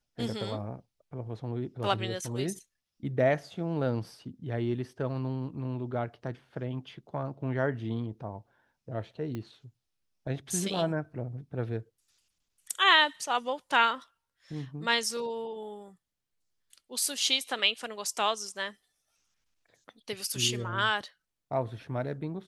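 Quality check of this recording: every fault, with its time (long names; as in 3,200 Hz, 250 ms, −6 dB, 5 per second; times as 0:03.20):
0:09.35: click −24 dBFS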